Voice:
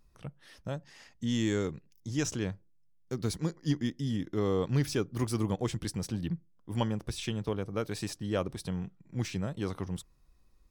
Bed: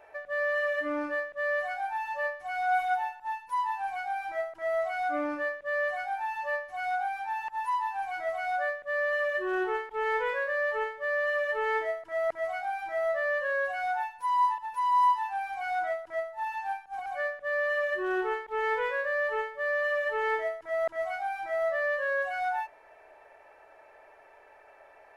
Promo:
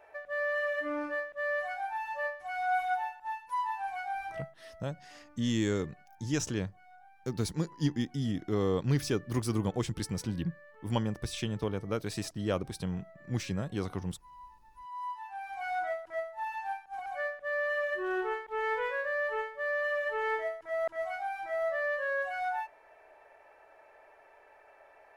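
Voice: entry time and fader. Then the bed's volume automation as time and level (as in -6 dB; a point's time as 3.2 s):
4.15 s, 0.0 dB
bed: 4.27 s -3 dB
4.78 s -26.5 dB
14.56 s -26.5 dB
15.62 s -3 dB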